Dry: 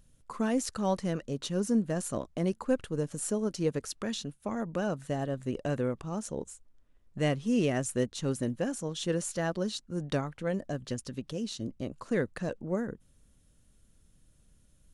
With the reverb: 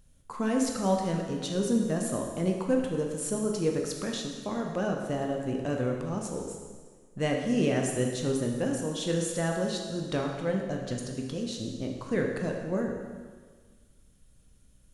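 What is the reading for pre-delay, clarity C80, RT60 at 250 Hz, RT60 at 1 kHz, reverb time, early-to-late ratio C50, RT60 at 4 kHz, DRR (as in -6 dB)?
6 ms, 5.0 dB, 1.7 s, 1.6 s, 1.6 s, 3.5 dB, 1.5 s, 1.0 dB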